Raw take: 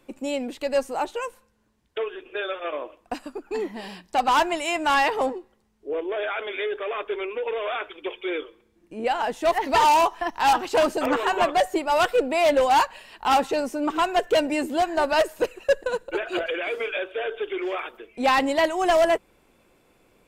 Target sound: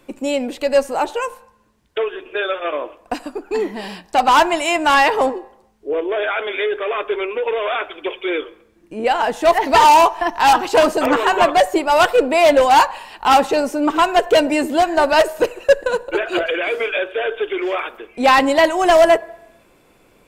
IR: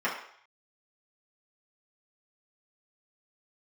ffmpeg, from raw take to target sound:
-filter_complex "[0:a]asplit=2[a][b];[1:a]atrim=start_sample=2205,asetrate=35280,aresample=44100[c];[b][c]afir=irnorm=-1:irlink=0,volume=-27dB[d];[a][d]amix=inputs=2:normalize=0,volume=7dB"

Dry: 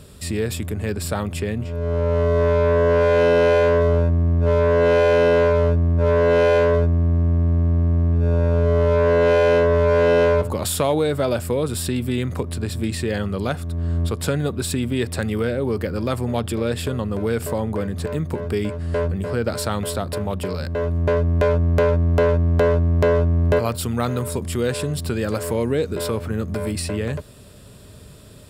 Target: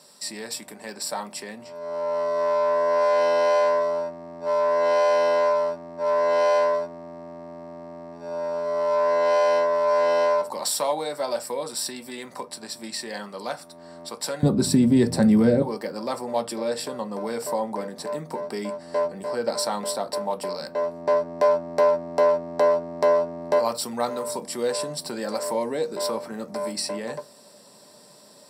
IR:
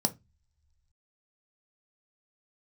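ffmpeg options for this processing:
-filter_complex "[0:a]asetnsamples=n=441:p=0,asendcmd='14.43 highpass f 140;15.62 highpass f 640',highpass=900[a];[1:a]atrim=start_sample=2205,atrim=end_sample=6174[b];[a][b]afir=irnorm=-1:irlink=0,volume=-7dB"

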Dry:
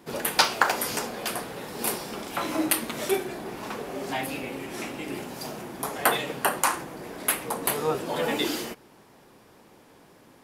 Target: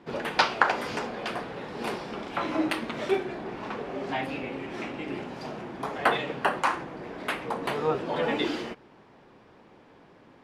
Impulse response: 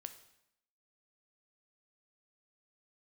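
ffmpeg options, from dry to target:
-af "lowpass=3.2k"

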